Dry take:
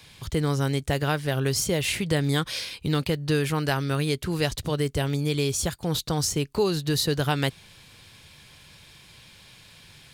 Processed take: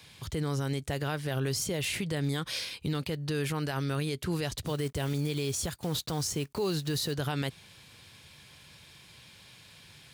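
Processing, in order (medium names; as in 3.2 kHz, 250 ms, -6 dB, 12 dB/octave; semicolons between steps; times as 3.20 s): 4.67–7.15 s: block-companded coder 5-bit; high-pass 61 Hz; peak limiter -19.5 dBFS, peak gain reduction 9 dB; trim -3 dB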